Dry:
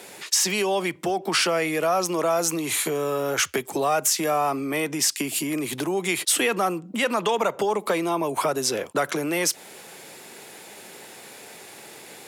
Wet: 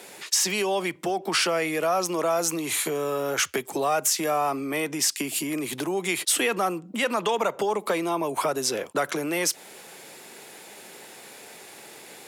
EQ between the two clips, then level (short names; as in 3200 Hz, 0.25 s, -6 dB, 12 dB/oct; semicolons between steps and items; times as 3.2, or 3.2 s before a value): low shelf 84 Hz -8.5 dB; -1.5 dB